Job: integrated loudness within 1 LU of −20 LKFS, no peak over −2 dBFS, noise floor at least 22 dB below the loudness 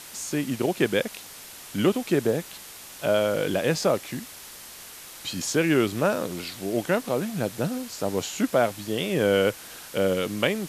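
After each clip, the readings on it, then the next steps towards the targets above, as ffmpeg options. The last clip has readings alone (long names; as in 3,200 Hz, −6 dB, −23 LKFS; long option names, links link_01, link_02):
background noise floor −43 dBFS; target noise floor −48 dBFS; integrated loudness −26.0 LKFS; sample peak −7.5 dBFS; target loudness −20.0 LKFS
→ -af "afftdn=noise_reduction=6:noise_floor=-43"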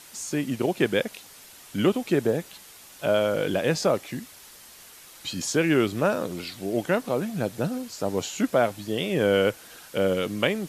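background noise floor −48 dBFS; integrated loudness −26.0 LKFS; sample peak −7.0 dBFS; target loudness −20.0 LKFS
→ -af "volume=6dB,alimiter=limit=-2dB:level=0:latency=1"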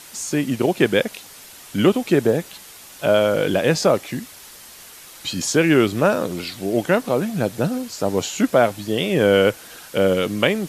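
integrated loudness −20.0 LKFS; sample peak −2.0 dBFS; background noise floor −42 dBFS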